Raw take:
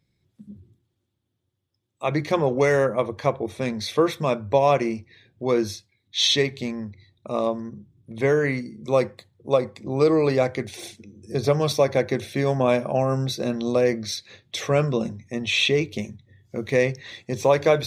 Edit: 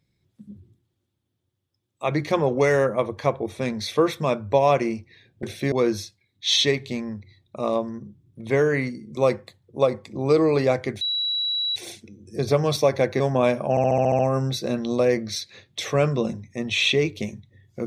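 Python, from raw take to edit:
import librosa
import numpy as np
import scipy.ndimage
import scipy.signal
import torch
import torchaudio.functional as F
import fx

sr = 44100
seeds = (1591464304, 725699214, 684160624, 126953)

y = fx.edit(x, sr, fx.insert_tone(at_s=10.72, length_s=0.75, hz=3910.0, db=-22.0),
    fx.move(start_s=12.16, length_s=0.29, to_s=5.43),
    fx.stutter(start_s=12.95, slice_s=0.07, count=8), tone=tone)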